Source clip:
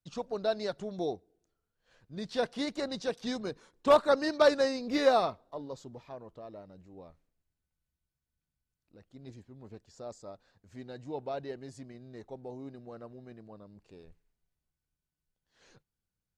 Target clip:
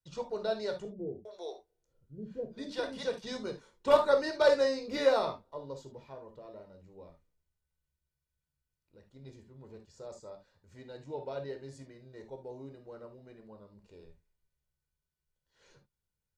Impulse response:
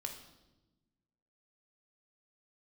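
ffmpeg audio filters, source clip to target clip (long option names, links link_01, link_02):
-filter_complex "[0:a]asettb=1/sr,asplit=3[link_01][link_02][link_03];[link_01]atrim=end=0.854[link_04];[link_02]atrim=start=0.85:end=3.03,asetpts=PTS-STARTPTS,afade=type=in:duration=0.004:curve=qsin,afade=type=out:start_time=2.176:duration=0.004:curve=qsin,acrossover=split=470[link_05][link_06];[link_06]adelay=400[link_07];[link_05][link_07]amix=inputs=2:normalize=0,atrim=end_sample=96138[link_08];[link_03]atrim=start=3.026[link_09];[link_04][link_08]acrossfade=duration=0.004:curve1=hsin:curve2=qsin[link_10];[link_10][link_09]acrossfade=duration=0.004:curve1=qsin:curve2=hsin[link_11];[1:a]atrim=start_sample=2205,afade=type=out:start_time=0.13:duration=0.01,atrim=end_sample=6174[link_12];[link_11][link_12]afir=irnorm=-1:irlink=0"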